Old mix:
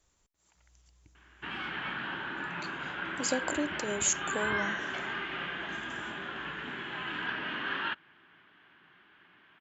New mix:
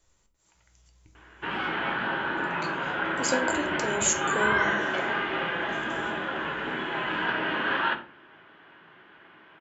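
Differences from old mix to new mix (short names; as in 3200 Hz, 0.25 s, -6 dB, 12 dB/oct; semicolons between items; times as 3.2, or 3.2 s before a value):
background: add bell 570 Hz +9.5 dB 2.1 oct; reverb: on, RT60 0.40 s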